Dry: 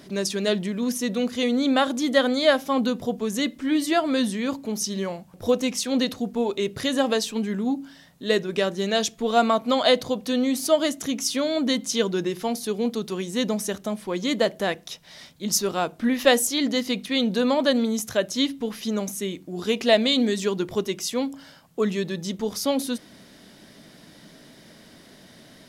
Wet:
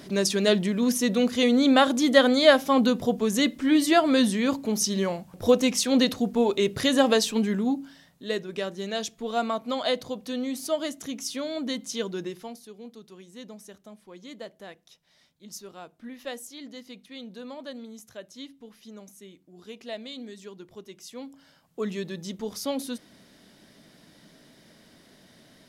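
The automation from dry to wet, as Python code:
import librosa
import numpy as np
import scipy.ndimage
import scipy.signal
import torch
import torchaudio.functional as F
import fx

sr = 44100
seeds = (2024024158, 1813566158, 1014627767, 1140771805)

y = fx.gain(x, sr, db=fx.line((7.44, 2.0), (8.33, -7.5), (12.27, -7.5), (12.69, -18.5), (20.79, -18.5), (21.92, -6.0)))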